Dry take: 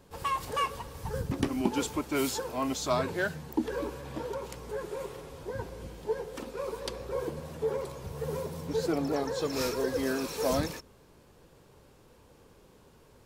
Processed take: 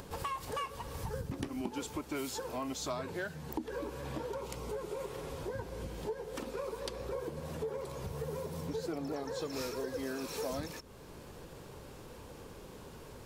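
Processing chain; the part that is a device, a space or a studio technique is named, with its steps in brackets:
upward and downward compression (upward compression, threshold −50 dBFS; downward compressor 4 to 1, threshold −44 dBFS, peak gain reduction 18.5 dB)
0:04.41–0:05.00: notch filter 1,700 Hz, Q 6
level +6 dB

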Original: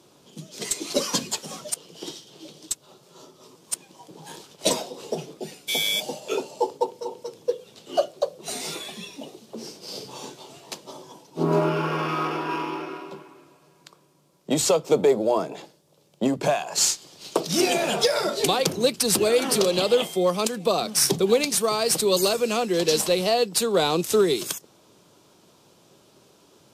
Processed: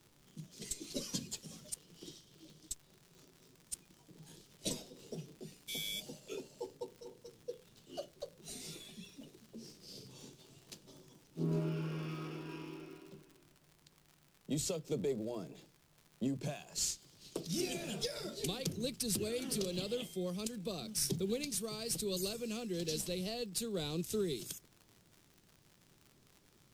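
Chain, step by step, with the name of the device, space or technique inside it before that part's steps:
guitar amp tone stack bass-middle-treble 10-0-1
vinyl LP (surface crackle 100 per second −54 dBFS; pink noise bed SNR 31 dB)
level +6 dB

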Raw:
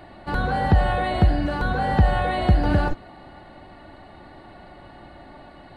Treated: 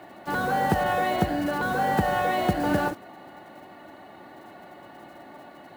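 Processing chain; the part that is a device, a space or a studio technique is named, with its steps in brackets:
early digital voice recorder (band-pass filter 200–3,800 Hz; one scale factor per block 5 bits)

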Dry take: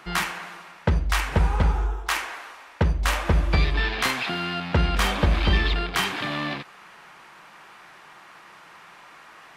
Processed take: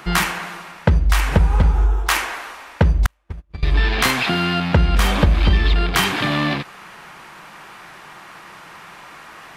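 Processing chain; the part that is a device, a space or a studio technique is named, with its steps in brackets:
ASMR close-microphone chain (low-shelf EQ 240 Hz +7 dB; downward compressor 4 to 1, threshold −19 dBFS, peak gain reduction 8.5 dB; high-shelf EQ 10,000 Hz +6 dB)
0:03.06–0:03.63: noise gate −16 dBFS, range −47 dB
level +7 dB

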